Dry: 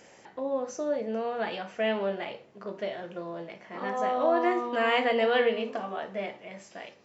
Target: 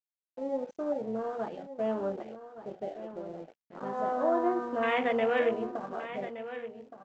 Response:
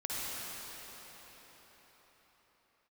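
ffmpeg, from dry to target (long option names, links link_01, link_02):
-af "afwtdn=0.0316,adynamicequalizer=threshold=0.00891:dfrequency=270:dqfactor=1.6:tfrequency=270:tqfactor=1.6:attack=5:release=100:ratio=0.375:range=1.5:mode=boostabove:tftype=bell,aresample=16000,aeval=exprs='sgn(val(0))*max(abs(val(0))-0.00188,0)':channel_layout=same,aresample=44100,aecho=1:1:1170:0.237,volume=-3dB"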